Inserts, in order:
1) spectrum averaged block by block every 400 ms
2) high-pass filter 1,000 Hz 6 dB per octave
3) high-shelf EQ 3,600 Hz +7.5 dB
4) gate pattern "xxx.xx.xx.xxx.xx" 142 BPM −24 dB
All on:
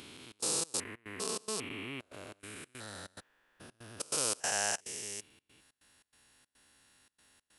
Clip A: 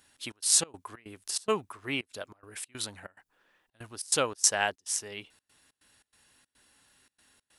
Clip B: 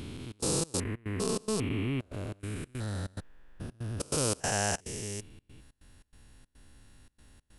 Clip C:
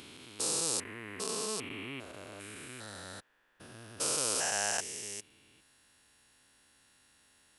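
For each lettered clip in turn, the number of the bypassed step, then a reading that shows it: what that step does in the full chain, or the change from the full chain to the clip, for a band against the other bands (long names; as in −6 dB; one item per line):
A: 1, 500 Hz band +1.5 dB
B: 2, 125 Hz band +16.0 dB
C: 4, change in integrated loudness +1.5 LU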